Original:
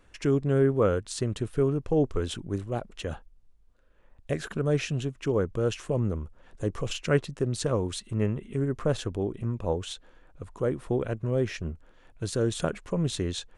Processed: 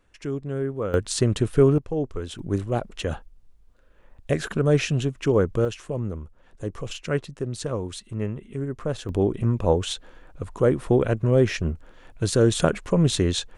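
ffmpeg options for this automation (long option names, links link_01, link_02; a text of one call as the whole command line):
ffmpeg -i in.wav -af "asetnsamples=nb_out_samples=441:pad=0,asendcmd='0.94 volume volume 8dB;1.78 volume volume -2.5dB;2.39 volume volume 6dB;5.65 volume volume -1.5dB;9.09 volume volume 8dB',volume=-5dB" out.wav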